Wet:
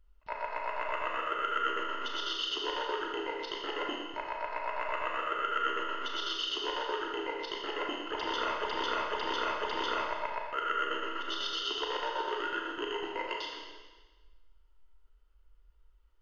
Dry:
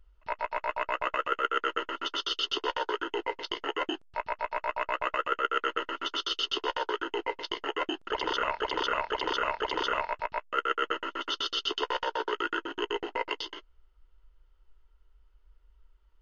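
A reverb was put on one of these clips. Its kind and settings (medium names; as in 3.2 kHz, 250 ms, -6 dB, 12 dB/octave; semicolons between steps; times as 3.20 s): Schroeder reverb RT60 1.3 s, combs from 27 ms, DRR -0.5 dB; trim -6 dB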